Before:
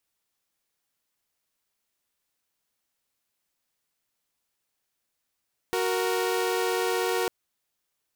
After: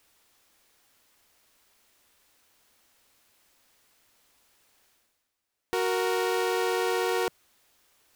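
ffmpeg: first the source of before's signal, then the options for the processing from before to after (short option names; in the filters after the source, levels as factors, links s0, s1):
-f lavfi -i "aevalsrc='0.0596*((2*mod(369.99*t,1)-1)+(2*mod(466.16*t,1)-1))':d=1.55:s=44100"
-af "highshelf=f=5100:g=-4.5,areverse,acompressor=mode=upward:threshold=0.00316:ratio=2.5,areverse,equalizer=f=160:t=o:w=0.43:g=-8"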